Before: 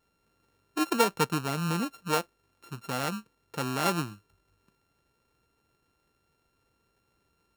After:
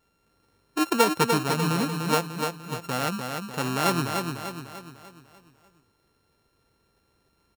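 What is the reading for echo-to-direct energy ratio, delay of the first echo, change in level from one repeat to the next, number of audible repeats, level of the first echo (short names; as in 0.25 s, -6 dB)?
-4.0 dB, 0.297 s, -6.5 dB, 5, -5.0 dB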